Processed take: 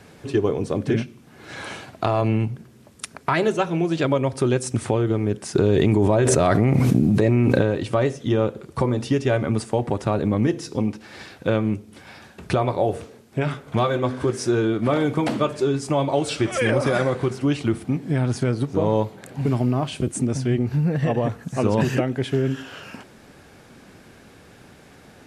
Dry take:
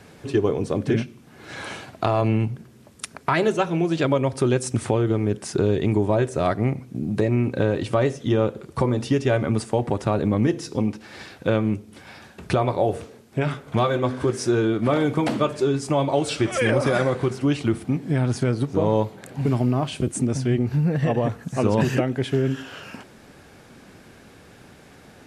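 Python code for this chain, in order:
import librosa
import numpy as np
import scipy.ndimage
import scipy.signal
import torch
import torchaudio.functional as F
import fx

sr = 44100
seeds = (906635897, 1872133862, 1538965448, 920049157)

y = fx.env_flatten(x, sr, amount_pct=100, at=(5.55, 7.62))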